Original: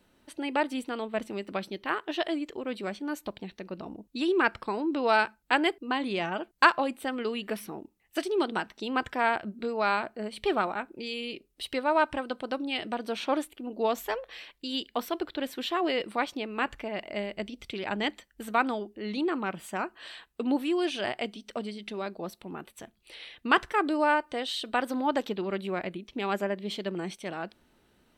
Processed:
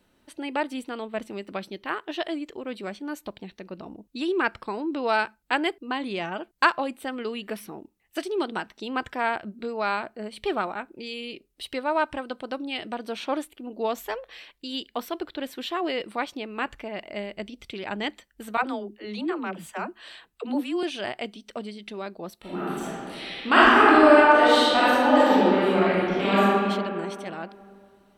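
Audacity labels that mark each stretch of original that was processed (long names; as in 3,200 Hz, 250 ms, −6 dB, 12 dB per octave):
18.570000	20.830000	all-pass dispersion lows, late by 74 ms, half as late at 340 Hz
22.400000	26.400000	thrown reverb, RT60 2.4 s, DRR −11 dB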